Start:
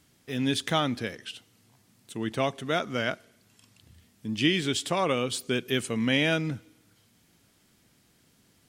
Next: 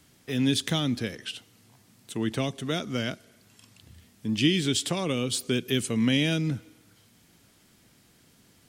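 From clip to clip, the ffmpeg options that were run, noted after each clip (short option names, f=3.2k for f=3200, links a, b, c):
-filter_complex "[0:a]acrossover=split=370|3000[a][b][c];[b]acompressor=threshold=-39dB:ratio=6[d];[a][d][c]amix=inputs=3:normalize=0,volume=4dB"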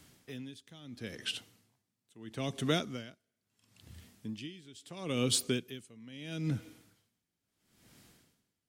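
-af "aeval=exprs='val(0)*pow(10,-28*(0.5-0.5*cos(2*PI*0.75*n/s))/20)':c=same"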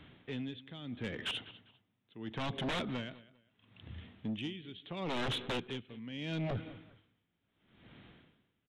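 -af "aresample=8000,aeval=exprs='0.0237*(abs(mod(val(0)/0.0237+3,4)-2)-1)':c=same,aresample=44100,aecho=1:1:199|398:0.106|0.0265,asoftclip=type=tanh:threshold=-36dB,volume=5.5dB"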